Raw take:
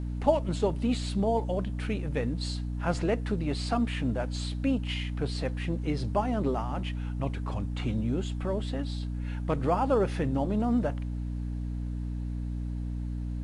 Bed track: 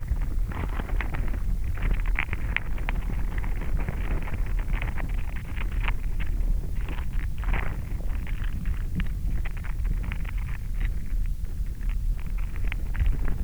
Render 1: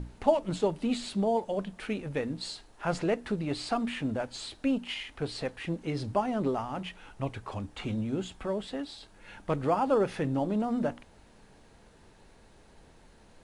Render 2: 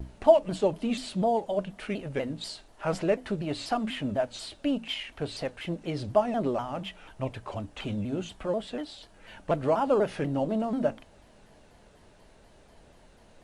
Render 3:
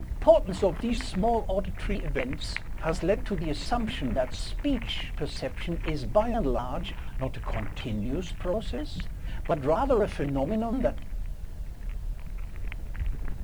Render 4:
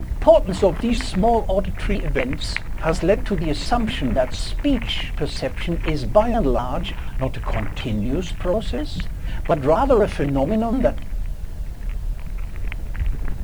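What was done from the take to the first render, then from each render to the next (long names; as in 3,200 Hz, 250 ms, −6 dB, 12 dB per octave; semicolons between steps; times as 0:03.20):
mains-hum notches 60/120/180/240/300 Hz
hollow resonant body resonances 620/2,900 Hz, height 9 dB; pitch modulation by a square or saw wave saw down 4.1 Hz, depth 160 cents
mix in bed track −7 dB
level +8 dB; brickwall limiter −2 dBFS, peak gain reduction 3 dB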